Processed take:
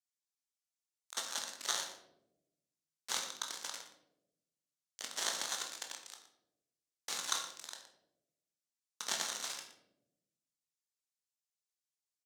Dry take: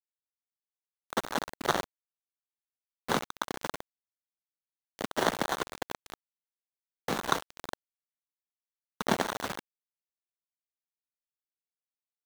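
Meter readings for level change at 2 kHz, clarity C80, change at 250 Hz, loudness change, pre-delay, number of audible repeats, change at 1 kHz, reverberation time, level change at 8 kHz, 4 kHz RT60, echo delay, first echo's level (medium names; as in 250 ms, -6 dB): -8.5 dB, 8.5 dB, -23.5 dB, -5.5 dB, 17 ms, 1, -13.0 dB, 0.90 s, +5.0 dB, 0.50 s, 118 ms, -12.5 dB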